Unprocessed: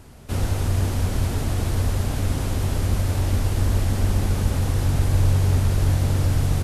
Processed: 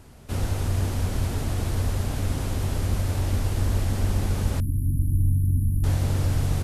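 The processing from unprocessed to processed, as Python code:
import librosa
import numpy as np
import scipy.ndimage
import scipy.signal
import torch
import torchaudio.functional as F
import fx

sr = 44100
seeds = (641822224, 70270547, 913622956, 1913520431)

y = fx.brickwall_bandstop(x, sr, low_hz=330.0, high_hz=9600.0, at=(4.6, 5.84))
y = y * 10.0 ** (-3.0 / 20.0)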